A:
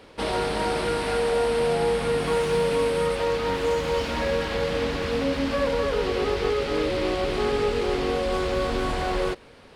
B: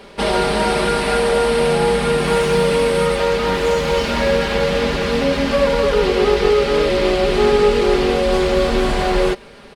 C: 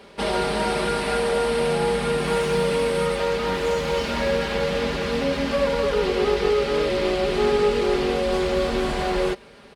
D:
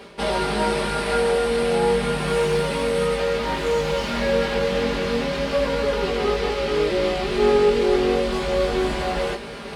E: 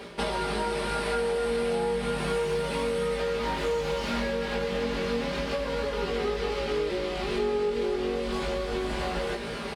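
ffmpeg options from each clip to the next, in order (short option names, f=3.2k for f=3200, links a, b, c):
-af "aecho=1:1:5:0.59,volume=7.5dB"
-af "highpass=41,volume=-6dB"
-af "areverse,acompressor=mode=upward:threshold=-23dB:ratio=2.5,areverse,flanger=delay=17.5:depth=4.4:speed=0.32,volume=3.5dB"
-filter_complex "[0:a]acompressor=threshold=-26dB:ratio=10,asplit=2[a][b];[b]adelay=17,volume=-11dB[c];[a][c]amix=inputs=2:normalize=0"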